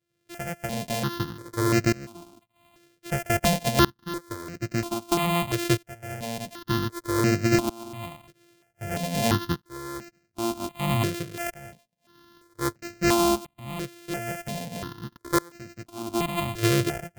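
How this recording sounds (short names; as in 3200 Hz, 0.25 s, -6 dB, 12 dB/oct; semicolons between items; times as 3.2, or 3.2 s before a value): a buzz of ramps at a fixed pitch in blocks of 128 samples; tremolo saw up 0.52 Hz, depth 95%; notches that jump at a steady rate 2.9 Hz 230–3400 Hz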